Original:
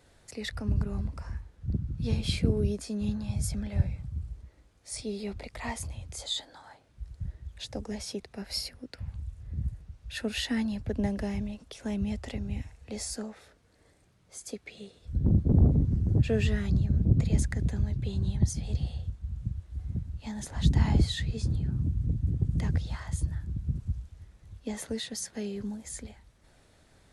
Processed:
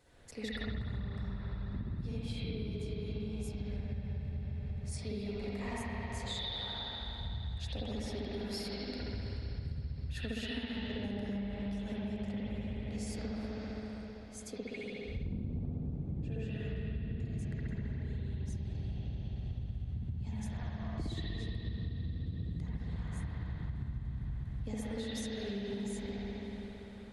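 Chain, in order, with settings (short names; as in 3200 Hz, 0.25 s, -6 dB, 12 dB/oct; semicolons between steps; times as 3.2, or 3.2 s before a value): 20.57–20.98 double band-pass 870 Hz, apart 0.78 oct; reverb RT60 4.1 s, pre-delay 60 ms, DRR -9.5 dB; compressor 12:1, threshold -28 dBFS, peak gain reduction 20 dB; gain -6.5 dB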